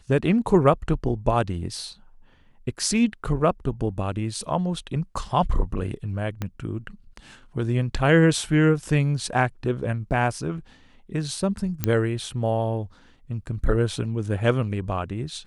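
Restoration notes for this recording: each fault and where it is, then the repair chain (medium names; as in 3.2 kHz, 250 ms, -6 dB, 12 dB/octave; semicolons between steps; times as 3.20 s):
6.42 s: pop -15 dBFS
11.84 s: pop -8 dBFS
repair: de-click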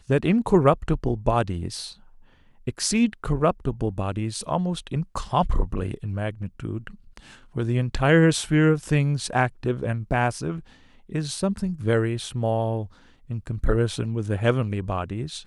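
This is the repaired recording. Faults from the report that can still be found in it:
6.42 s: pop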